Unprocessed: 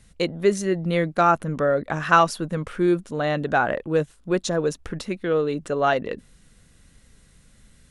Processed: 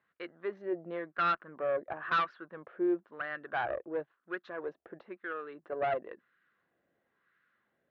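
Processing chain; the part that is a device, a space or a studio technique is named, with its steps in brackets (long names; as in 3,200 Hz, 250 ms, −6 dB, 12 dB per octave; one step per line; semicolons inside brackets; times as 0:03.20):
wah-wah guitar rig (LFO wah 0.98 Hz 650–1,400 Hz, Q 2.9; tube saturation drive 22 dB, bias 0.5; loudspeaker in its box 94–3,700 Hz, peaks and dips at 350 Hz +9 dB, 890 Hz −5 dB, 1,700 Hz +7 dB)
level −3 dB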